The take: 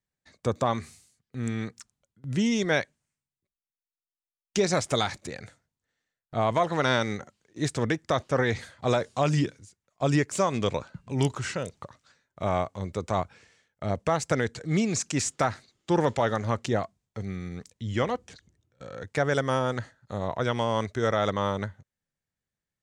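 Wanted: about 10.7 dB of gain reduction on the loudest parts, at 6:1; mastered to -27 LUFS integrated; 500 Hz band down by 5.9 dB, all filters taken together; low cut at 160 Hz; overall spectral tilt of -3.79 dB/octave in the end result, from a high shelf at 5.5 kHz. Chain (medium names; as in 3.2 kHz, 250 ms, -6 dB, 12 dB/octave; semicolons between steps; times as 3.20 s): high-pass 160 Hz; peaking EQ 500 Hz -7.5 dB; treble shelf 5.5 kHz +7 dB; compression 6:1, threshold -34 dBFS; trim +12.5 dB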